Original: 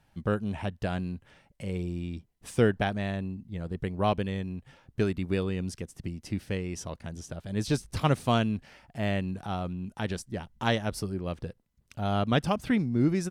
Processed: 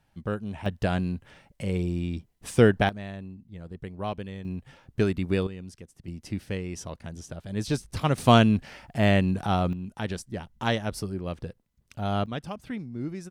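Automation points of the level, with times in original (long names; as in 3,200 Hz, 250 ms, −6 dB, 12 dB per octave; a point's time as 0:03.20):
−2.5 dB
from 0:00.66 +5 dB
from 0:02.89 −6 dB
from 0:04.45 +3 dB
from 0:05.47 −8 dB
from 0:06.08 0 dB
from 0:08.18 +8 dB
from 0:09.73 +0.5 dB
from 0:12.26 −9 dB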